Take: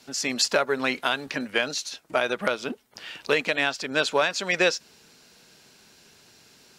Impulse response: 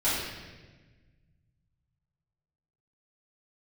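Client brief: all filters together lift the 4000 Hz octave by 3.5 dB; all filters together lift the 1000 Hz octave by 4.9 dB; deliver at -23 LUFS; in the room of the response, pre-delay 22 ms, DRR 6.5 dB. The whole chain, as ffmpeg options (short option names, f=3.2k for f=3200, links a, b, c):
-filter_complex "[0:a]equalizer=f=1k:t=o:g=6.5,equalizer=f=4k:t=o:g=4,asplit=2[a][b];[1:a]atrim=start_sample=2205,adelay=22[c];[b][c]afir=irnorm=-1:irlink=0,volume=-18.5dB[d];[a][d]amix=inputs=2:normalize=0,volume=-1dB"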